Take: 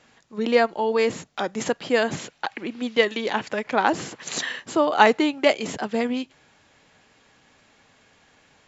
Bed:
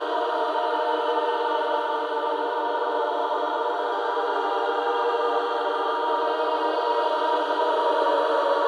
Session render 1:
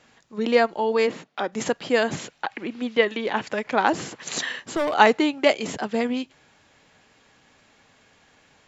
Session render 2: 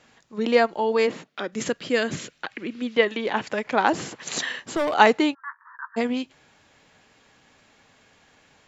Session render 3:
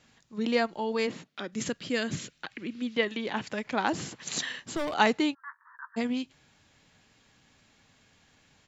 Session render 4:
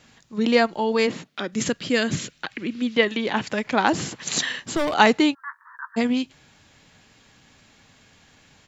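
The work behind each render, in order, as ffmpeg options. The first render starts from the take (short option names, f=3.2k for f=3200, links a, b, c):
-filter_complex "[0:a]asplit=3[a][b][c];[a]afade=t=out:st=1.06:d=0.02[d];[b]highpass=210,lowpass=3.7k,afade=t=in:st=1.06:d=0.02,afade=t=out:st=1.51:d=0.02[e];[c]afade=t=in:st=1.51:d=0.02[f];[d][e][f]amix=inputs=3:normalize=0,asettb=1/sr,asplit=3[g][h][i];[g]atrim=end=2.364[j];[h]atrim=start=2.36:end=3.36,asetpts=PTS-STARTPTS,afade=t=in:d=0.004:c=qsin,afade=t=out:st=0.996:d=0.004:c=qsin,acrossover=split=3600[k][l];[l]acompressor=threshold=-49dB:ratio=4:attack=1:release=60[m];[k][m]amix=inputs=2:normalize=0[n];[i]atrim=start=3.356[o];[j][n]acrossfade=d=0.004:c1=hsin:c2=qsin[p];[p][o]acrossfade=d=0.004:c1=qsin:c2=hsin,asettb=1/sr,asplit=3[q][r][s];[q]atrim=end=4.484[t];[r]atrim=start=4.48:end=4.94,asetpts=PTS-STARTPTS,afade=t=in:d=0.004:c=qsin,afade=t=out:st=0.456:d=0.004:c=qsin,asoftclip=type=hard:threshold=-20dB[u];[s]atrim=start=4.936[v];[t][u]acrossfade=d=0.004:c1=hsin:c2=qsin[w];[w][v]acrossfade=d=0.004:c1=qsin:c2=hsin"
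-filter_complex "[0:a]asettb=1/sr,asplit=3[a][b][c];[a]atrim=end=1.294[d];[b]atrim=start=1.29:end=2.93,asetpts=PTS-STARTPTS,afade=t=in:d=0.004:c=qsin,afade=t=out:st=1.636:d=0.004:c=qsin,equalizer=f=820:t=o:w=0.69:g=-11[e];[c]atrim=start=2.926[f];[d][e]acrossfade=d=0.004:c1=hsin:c2=qsin[g];[g][f]acrossfade=d=0.004:c1=qsin:c2=hsin,asplit=3[h][i][j];[h]afade=t=out:st=5.33:d=0.02[k];[i]asuperpass=centerf=1300:order=20:qfactor=1.5,afade=t=in:st=5.33:d=0.02,afade=t=out:st=5.96:d=0.02[l];[j]afade=t=in:st=5.96:d=0.02[m];[k][l][m]amix=inputs=3:normalize=0"
-af "firequalizer=gain_entry='entry(110,0);entry(450,-9);entry(3900,-3)':delay=0.05:min_phase=1"
-af "volume=8dB,alimiter=limit=-2dB:level=0:latency=1"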